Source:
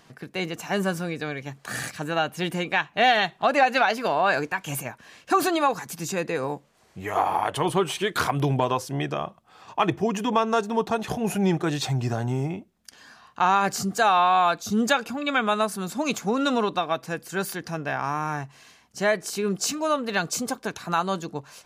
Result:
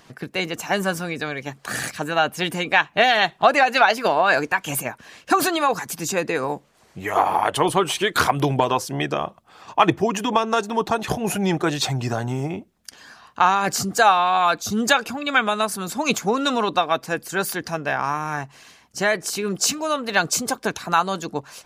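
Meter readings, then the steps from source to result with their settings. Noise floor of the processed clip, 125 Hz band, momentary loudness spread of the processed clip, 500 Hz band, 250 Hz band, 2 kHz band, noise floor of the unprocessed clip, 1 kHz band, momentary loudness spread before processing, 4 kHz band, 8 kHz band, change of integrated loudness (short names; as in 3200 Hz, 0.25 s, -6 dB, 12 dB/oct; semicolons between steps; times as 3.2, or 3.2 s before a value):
-55 dBFS, +0.5 dB, 11 LU, +3.0 dB, +1.5 dB, +5.5 dB, -59 dBFS, +3.5 dB, 11 LU, +5.5 dB, +6.0 dB, +3.5 dB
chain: harmonic-percussive split percussive +7 dB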